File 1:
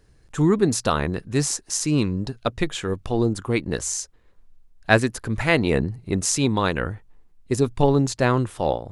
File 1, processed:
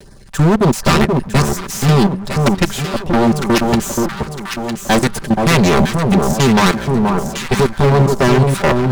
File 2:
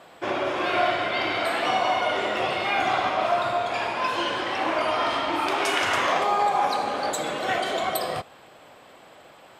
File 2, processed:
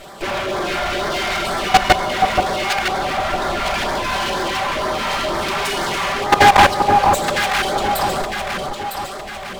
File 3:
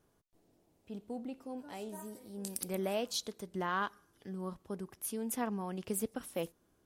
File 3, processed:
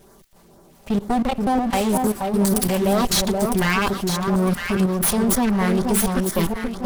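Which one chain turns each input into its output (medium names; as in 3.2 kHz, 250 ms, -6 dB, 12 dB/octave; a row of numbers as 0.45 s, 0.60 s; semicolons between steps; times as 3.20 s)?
comb filter that takes the minimum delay 5.1 ms; level held to a coarse grid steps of 23 dB; LFO notch sine 2.1 Hz 290–2800 Hz; wavefolder -22 dBFS; echo whose repeats swap between lows and highs 478 ms, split 1.2 kHz, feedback 58%, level -4.5 dB; power-law waveshaper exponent 0.7; peak normalisation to -3 dBFS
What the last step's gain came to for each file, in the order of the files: +13.5 dB, +18.5 dB, +22.0 dB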